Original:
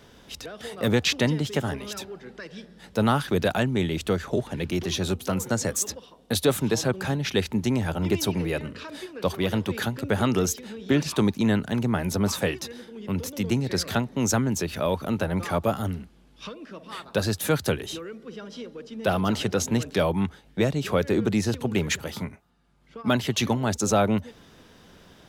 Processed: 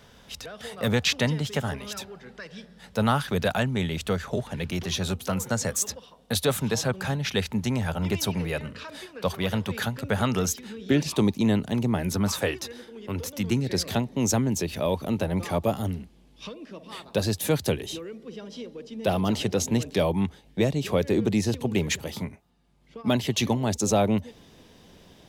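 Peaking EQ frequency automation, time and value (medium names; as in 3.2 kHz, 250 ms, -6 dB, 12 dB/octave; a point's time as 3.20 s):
peaking EQ -9 dB 0.56 oct
10.42 s 330 Hz
11.08 s 1.5 kHz
11.95 s 1.5 kHz
12.43 s 180 Hz
13.16 s 180 Hz
13.76 s 1.4 kHz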